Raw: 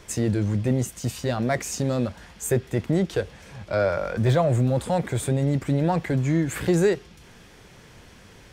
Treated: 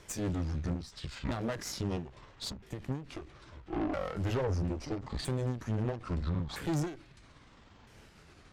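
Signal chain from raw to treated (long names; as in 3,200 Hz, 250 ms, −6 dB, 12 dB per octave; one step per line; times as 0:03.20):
pitch shifter swept by a sawtooth −12 semitones, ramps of 1,312 ms
tube saturation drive 25 dB, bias 0.75
every ending faded ahead of time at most 130 dB per second
level −2.5 dB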